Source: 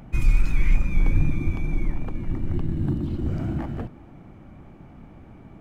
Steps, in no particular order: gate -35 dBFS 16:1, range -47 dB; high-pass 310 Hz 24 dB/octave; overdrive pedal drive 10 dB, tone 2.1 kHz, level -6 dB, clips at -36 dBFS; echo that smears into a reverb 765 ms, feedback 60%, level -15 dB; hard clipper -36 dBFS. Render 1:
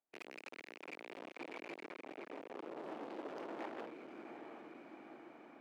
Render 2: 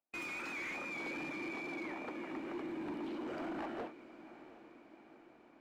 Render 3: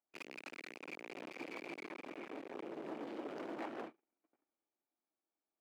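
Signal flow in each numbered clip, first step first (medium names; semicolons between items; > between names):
gate > echo that smears into a reverb > hard clipper > overdrive pedal > high-pass; gate > high-pass > hard clipper > overdrive pedal > echo that smears into a reverb; echo that smears into a reverb > overdrive pedal > gate > hard clipper > high-pass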